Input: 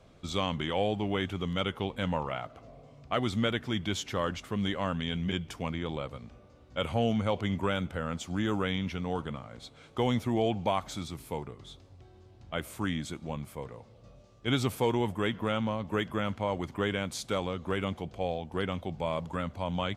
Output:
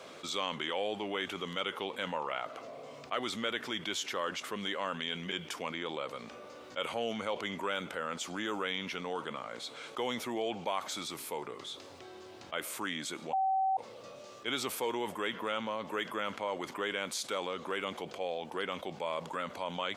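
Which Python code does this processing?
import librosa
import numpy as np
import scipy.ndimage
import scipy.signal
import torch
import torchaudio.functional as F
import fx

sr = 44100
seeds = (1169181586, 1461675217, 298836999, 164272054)

y = fx.edit(x, sr, fx.bleep(start_s=13.33, length_s=0.44, hz=767.0, db=-16.5), tone=tone)
y = scipy.signal.sosfilt(scipy.signal.butter(2, 450.0, 'highpass', fs=sr, output='sos'), y)
y = fx.peak_eq(y, sr, hz=720.0, db=-4.5, octaves=0.49)
y = fx.env_flatten(y, sr, amount_pct=50)
y = y * librosa.db_to_amplitude(-5.5)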